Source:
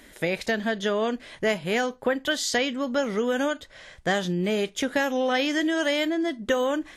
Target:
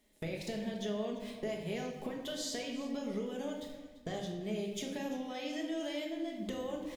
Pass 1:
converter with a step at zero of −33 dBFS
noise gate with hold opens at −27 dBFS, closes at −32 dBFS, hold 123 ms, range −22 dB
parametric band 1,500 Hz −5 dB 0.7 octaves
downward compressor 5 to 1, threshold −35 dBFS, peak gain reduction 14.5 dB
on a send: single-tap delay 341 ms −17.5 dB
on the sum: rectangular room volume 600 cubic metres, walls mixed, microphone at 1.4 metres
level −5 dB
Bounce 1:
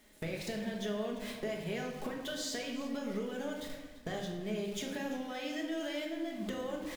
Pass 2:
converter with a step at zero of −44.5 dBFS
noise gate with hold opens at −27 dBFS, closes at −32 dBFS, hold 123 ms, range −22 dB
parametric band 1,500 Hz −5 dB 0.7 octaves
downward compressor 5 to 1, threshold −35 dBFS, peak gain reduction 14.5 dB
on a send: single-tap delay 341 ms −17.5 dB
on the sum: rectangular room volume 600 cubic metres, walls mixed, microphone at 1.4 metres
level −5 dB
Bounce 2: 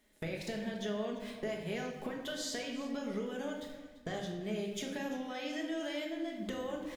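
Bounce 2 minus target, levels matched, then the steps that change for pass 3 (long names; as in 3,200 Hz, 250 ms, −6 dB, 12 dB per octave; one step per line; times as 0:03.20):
2,000 Hz band +3.5 dB
change: parametric band 1,500 Hz −13 dB 0.7 octaves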